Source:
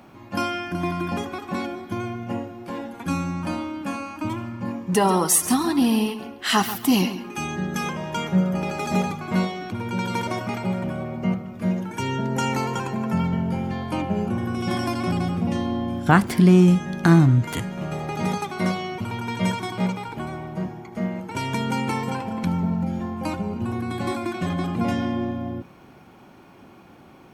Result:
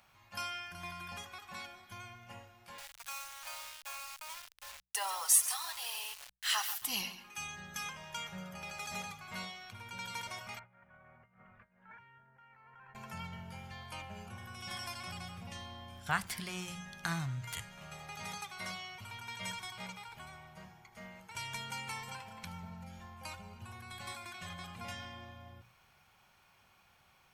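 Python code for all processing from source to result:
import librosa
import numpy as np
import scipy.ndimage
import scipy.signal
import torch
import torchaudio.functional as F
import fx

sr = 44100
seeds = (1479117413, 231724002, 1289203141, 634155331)

y = fx.chain(x, sr, fx.cheby2_highpass(hz=260.0, order=4, stop_db=40),
    fx.quant_dither(seeds[0], bits=6, dither='none'), at=(2.78, 6.82))
y = fx.chain(y, sr, fx.hum_notches(base_hz=50, count=7),
    fx.over_compress(threshold_db=-34.0, ratio=-1.0),
    fx.ladder_lowpass(hz=2000.0, resonance_pct=45), at=(10.59, 12.95))
y = fx.tone_stack(y, sr, knobs='10-0-10')
y = fx.hum_notches(y, sr, base_hz=60, count=3)
y = F.gain(torch.from_numpy(y), -6.0).numpy()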